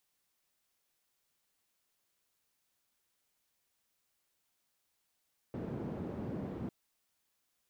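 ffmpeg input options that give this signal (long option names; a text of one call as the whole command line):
ffmpeg -f lavfi -i "anoisesrc=color=white:duration=1.15:sample_rate=44100:seed=1,highpass=frequency=110,lowpass=frequency=270,volume=-14.4dB" out.wav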